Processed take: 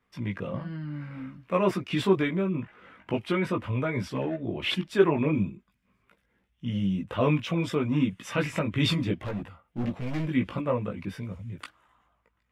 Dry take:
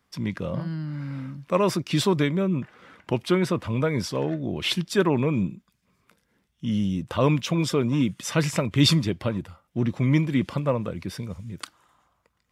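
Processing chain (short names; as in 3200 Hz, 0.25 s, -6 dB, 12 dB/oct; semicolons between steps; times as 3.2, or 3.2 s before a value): resonant high shelf 3600 Hz -8 dB, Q 1.5; 9.15–10.26 overloaded stage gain 27 dB; chorus voices 6, 0.44 Hz, delay 18 ms, depth 2.5 ms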